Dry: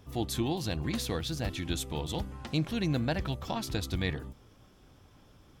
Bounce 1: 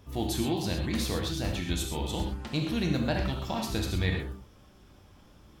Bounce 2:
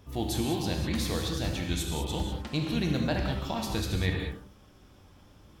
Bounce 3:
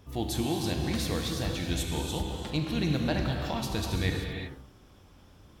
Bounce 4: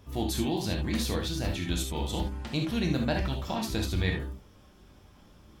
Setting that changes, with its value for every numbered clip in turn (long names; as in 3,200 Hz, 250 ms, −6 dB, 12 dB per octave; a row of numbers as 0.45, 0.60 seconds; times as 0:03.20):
reverb whose tail is shaped and stops, gate: 150, 230, 410, 100 milliseconds